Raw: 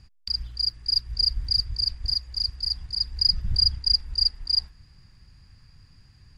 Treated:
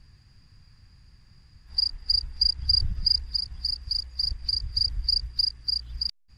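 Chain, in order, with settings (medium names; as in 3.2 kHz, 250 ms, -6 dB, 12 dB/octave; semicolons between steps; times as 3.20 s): reverse the whole clip; trim -1.5 dB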